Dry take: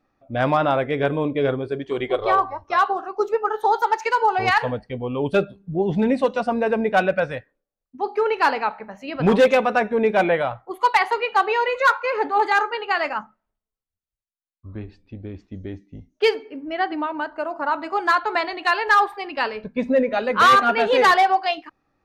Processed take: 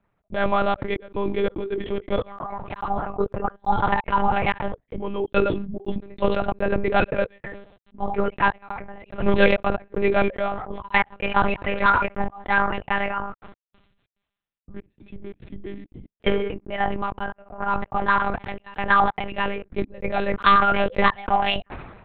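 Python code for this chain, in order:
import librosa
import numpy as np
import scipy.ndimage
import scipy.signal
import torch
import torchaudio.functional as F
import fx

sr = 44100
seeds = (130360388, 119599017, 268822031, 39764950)

y = fx.step_gate(x, sr, bpm=143, pattern='xx.xxxx.x..x', floor_db=-60.0, edge_ms=4.5)
y = fx.lpc_monotone(y, sr, seeds[0], pitch_hz=200.0, order=8)
y = fx.sustainer(y, sr, db_per_s=53.0)
y = F.gain(torch.from_numpy(y), -1.5).numpy()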